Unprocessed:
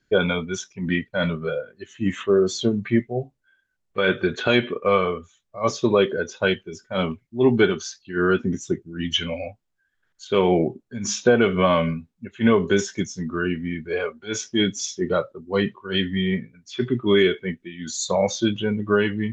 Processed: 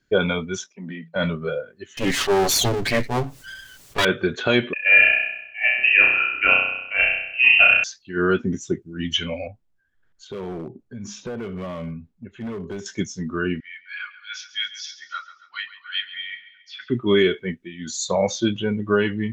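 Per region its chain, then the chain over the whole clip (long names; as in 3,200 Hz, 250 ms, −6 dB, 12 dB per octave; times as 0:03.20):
0:00.66–0:01.16: Chebyshev high-pass with heavy ripple 160 Hz, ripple 6 dB + downward compressor, threshold −30 dBFS
0:01.97–0:04.05: lower of the sound and its delayed copy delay 7.1 ms + high-shelf EQ 2,300 Hz +11 dB + envelope flattener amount 50%
0:04.73–0:07.84: flutter between parallel walls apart 5.5 metres, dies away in 0.82 s + voice inversion scrambler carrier 2,900 Hz
0:09.47–0:12.86: spectral tilt −2 dB per octave + downward compressor 2 to 1, threshold −38 dBFS + hard clipping −26.5 dBFS
0:13.60–0:16.90: elliptic band-pass filter 1,400–5,100 Hz, stop band 50 dB + repeating echo 137 ms, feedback 48%, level −14.5 dB
whole clip: no processing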